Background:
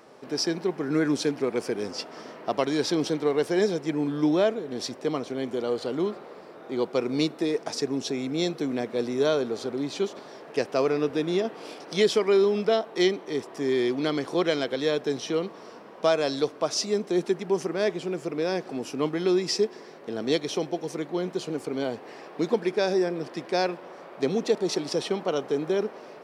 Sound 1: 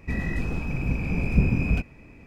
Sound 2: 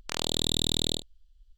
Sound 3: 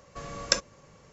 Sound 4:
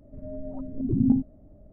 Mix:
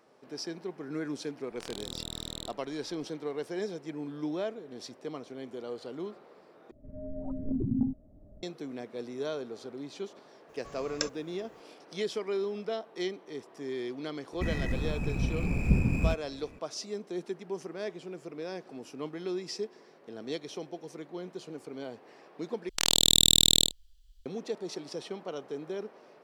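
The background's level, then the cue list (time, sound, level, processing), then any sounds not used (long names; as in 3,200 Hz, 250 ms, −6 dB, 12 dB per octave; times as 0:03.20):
background −11.5 dB
0:01.51: mix in 2 −12.5 dB
0:06.71: overwrite with 4 −8 dB + camcorder AGC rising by 12 dB per second
0:10.49: mix in 3 −9 dB + bit reduction 11 bits
0:14.33: mix in 1 −4 dB + running median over 9 samples
0:22.69: overwrite with 2 −1.5 dB + high-shelf EQ 2,300 Hz +11.5 dB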